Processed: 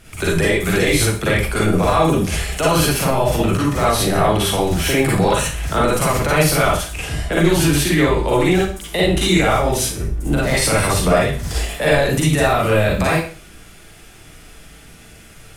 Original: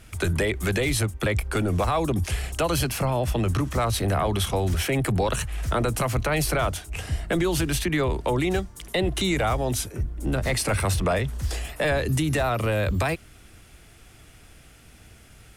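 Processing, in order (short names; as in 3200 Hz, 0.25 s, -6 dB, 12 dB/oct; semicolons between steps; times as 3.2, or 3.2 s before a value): bell 89 Hz -5 dB 0.74 oct; Schroeder reverb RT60 0.41 s, DRR -5.5 dB; gain +2.5 dB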